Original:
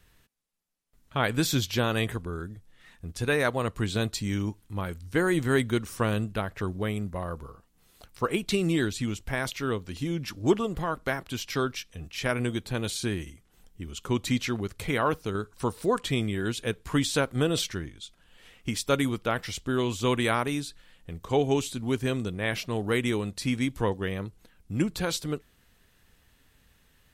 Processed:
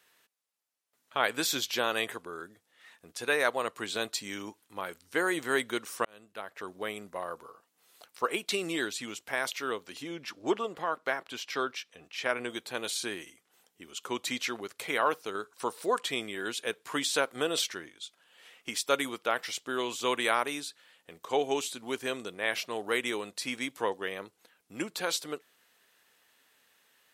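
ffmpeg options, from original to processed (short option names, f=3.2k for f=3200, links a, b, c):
-filter_complex "[0:a]asettb=1/sr,asplit=3[a][b][c];[a]atrim=end=10.024[d];[b]atrim=start=10.02:end=12.5,asetpts=PTS-STARTPTS,afade=t=in:d=0.004:c=qsin,afade=t=out:st=2.476:d=0.004:c=qsin,highshelf=f=6.7k:g=-11.5[e];[c]atrim=start=12.496[f];[d][e]acrossfade=d=0.004:c1=hsin:c2=qsin[g];[g][f]acrossfade=d=0.004:c1=qsin:c2=hsin,asplit=2[h][i];[h]atrim=end=6.05,asetpts=PTS-STARTPTS,afade=t=out:st=6.046:d=0.004:c=hsin[j];[i]atrim=start=6.05,asetpts=PTS-STARTPTS,afade=t=in:d=0.86[k];[j][k]concat=n=2:v=0:a=1,highpass=480"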